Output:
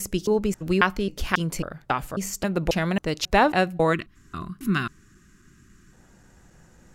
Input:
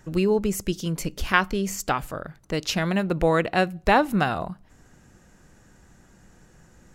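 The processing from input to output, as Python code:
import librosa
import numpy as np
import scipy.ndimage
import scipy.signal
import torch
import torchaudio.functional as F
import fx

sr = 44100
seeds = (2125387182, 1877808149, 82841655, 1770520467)

y = fx.block_reorder(x, sr, ms=271.0, group=3)
y = fx.spec_box(y, sr, start_s=3.93, length_s=2.0, low_hz=430.0, high_hz=1000.0, gain_db=-20)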